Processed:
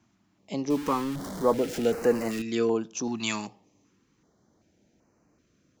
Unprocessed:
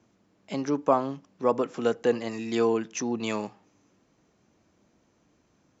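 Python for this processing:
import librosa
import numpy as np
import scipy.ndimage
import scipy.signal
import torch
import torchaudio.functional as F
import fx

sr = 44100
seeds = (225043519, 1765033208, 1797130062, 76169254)

y = fx.zero_step(x, sr, step_db=-30.5, at=(0.7, 2.42))
y = fx.high_shelf(y, sr, hz=3000.0, db=11.5, at=(3.03, 3.46), fade=0.02)
y = fx.filter_held_notch(y, sr, hz=2.6, low_hz=490.0, high_hz=3400.0)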